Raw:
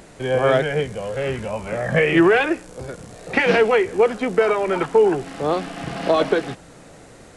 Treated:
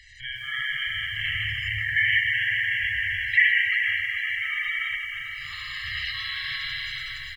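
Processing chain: distance through air 79 m; Schroeder reverb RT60 3.5 s, combs from 29 ms, DRR -5 dB; compression 8:1, threshold -18 dBFS, peak gain reduction 12.5 dB; tone controls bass -9 dB, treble -1 dB; hum notches 50/100/150 Hz; comb 1 ms, depth 93%; bucket-brigade echo 386 ms, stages 4096, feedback 61%, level -10 dB; level rider gain up to 4.5 dB; Chebyshev band-stop 100–1700 Hz, order 4; spectral gate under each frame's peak -20 dB strong; bit-crushed delay 156 ms, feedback 35%, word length 8-bit, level -12 dB

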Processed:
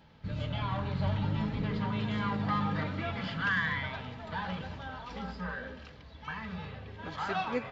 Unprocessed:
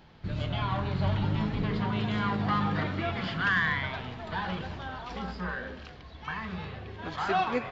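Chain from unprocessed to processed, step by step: comb of notches 360 Hz; trim -2.5 dB

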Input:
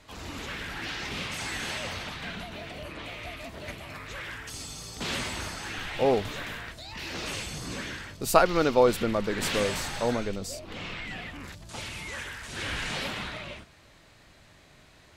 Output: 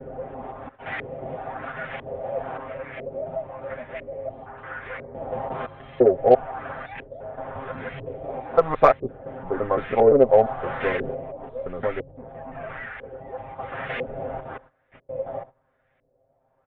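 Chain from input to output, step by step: slices played last to first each 156 ms, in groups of 5; gate -45 dBFS, range -15 dB; high-order bell 660 Hz +8.5 dB 1 oct; comb 6.9 ms, depth 88%; tape speed -9%; LFO low-pass saw up 1 Hz 410–2200 Hz; resampled via 8 kHz; Chebyshev shaper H 7 -36 dB, 8 -41 dB, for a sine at 1 dBFS; trim -2.5 dB

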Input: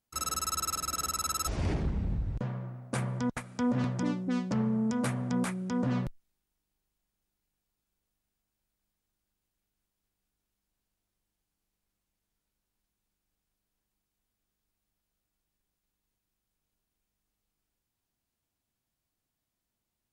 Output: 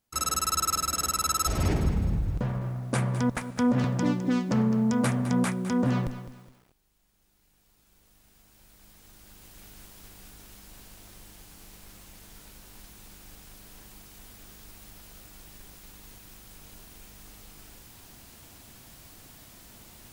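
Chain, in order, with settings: recorder AGC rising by 8.4 dB/s; bit-crushed delay 208 ms, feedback 35%, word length 9-bit, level -12 dB; trim +5 dB

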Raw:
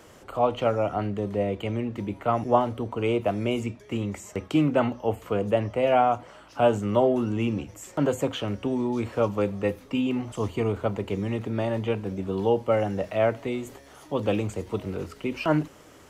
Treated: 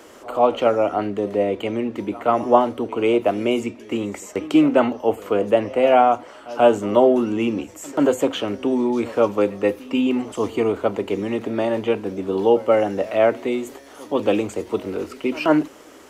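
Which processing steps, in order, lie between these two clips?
resonant low shelf 200 Hz -10 dB, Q 1.5; pre-echo 135 ms -20 dB; trim +5.5 dB

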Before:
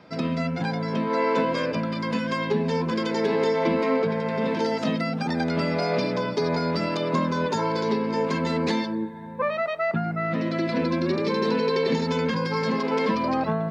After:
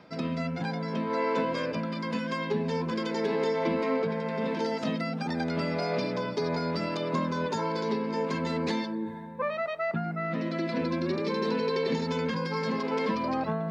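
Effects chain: de-hum 54.88 Hz, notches 2; reverse; upward compressor, threshold -26 dBFS; reverse; trim -5 dB

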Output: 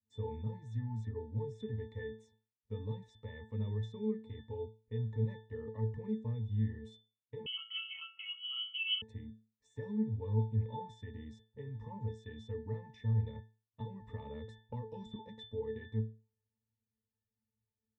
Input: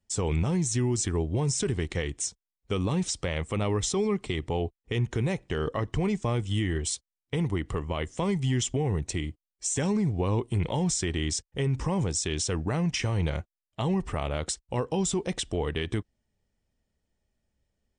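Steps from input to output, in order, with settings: pitch-class resonator A, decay 0.33 s; 7.46–9.02 s: frequency inversion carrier 3.1 kHz; 13.80–15.16 s: three bands compressed up and down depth 100%; trim +1 dB

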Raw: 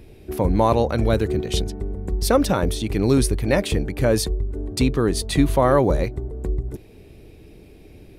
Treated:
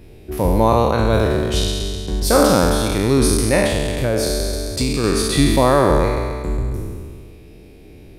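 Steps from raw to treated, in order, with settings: spectral sustain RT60 1.98 s; 3.66–5.04 s: compression 2:1, threshold -18 dBFS, peak gain reduction 5 dB

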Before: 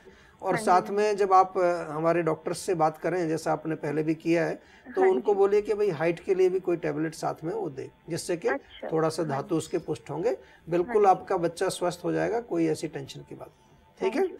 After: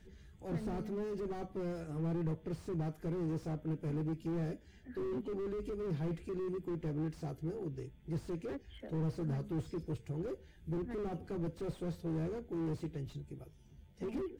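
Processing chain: amplifier tone stack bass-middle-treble 10-0-1; slew-rate limiter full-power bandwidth 1.3 Hz; trim +13 dB

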